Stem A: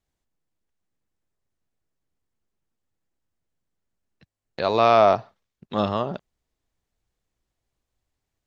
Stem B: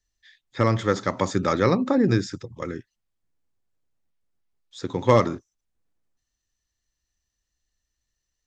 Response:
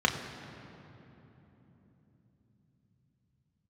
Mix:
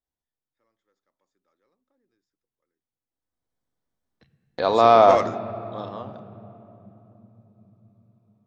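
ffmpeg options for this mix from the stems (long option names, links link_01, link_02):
-filter_complex "[0:a]volume=-1dB,afade=type=in:start_time=3.07:duration=0.58:silence=0.251189,afade=type=out:start_time=5.23:duration=0.21:silence=0.237137,asplit=3[link_01][link_02][link_03];[link_02]volume=-15.5dB[link_04];[1:a]highpass=330,asoftclip=type=tanh:threshold=-12.5dB,volume=-1.5dB[link_05];[link_03]apad=whole_len=373345[link_06];[link_05][link_06]sidechaingate=range=-48dB:threshold=-47dB:ratio=16:detection=peak[link_07];[2:a]atrim=start_sample=2205[link_08];[link_04][link_08]afir=irnorm=-1:irlink=0[link_09];[link_01][link_07][link_09]amix=inputs=3:normalize=0"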